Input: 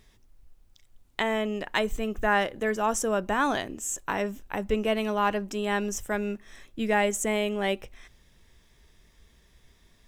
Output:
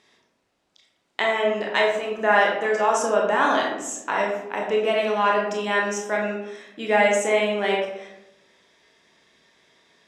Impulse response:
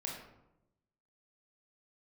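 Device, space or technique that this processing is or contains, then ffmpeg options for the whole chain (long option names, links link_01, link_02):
supermarket ceiling speaker: -filter_complex "[0:a]highpass=350,lowpass=6400[link_01];[1:a]atrim=start_sample=2205[link_02];[link_01][link_02]afir=irnorm=-1:irlink=0,volume=6.5dB"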